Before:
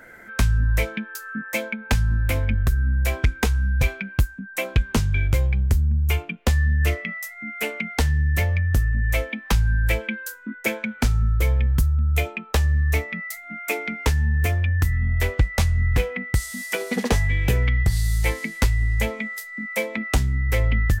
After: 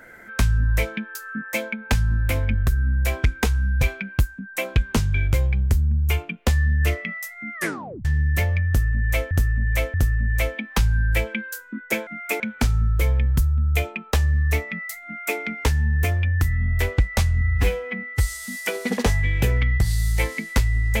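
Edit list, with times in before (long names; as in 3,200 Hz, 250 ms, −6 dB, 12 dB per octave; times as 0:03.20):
0:07.54: tape stop 0.51 s
0:08.68–0:09.31: repeat, 3 plays
0:13.46–0:13.79: duplicate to 0:10.81
0:15.83–0:16.53: time-stretch 1.5×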